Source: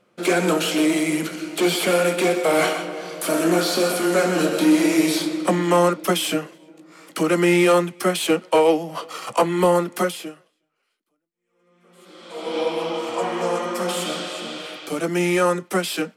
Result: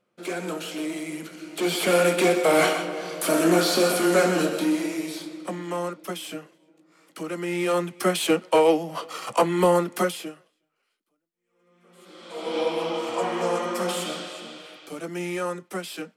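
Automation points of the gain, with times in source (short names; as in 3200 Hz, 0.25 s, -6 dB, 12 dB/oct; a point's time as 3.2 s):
1.28 s -11.5 dB
1.98 s -0.5 dB
4.25 s -0.5 dB
5.03 s -12.5 dB
7.47 s -12.5 dB
8 s -2 dB
13.84 s -2 dB
14.64 s -10 dB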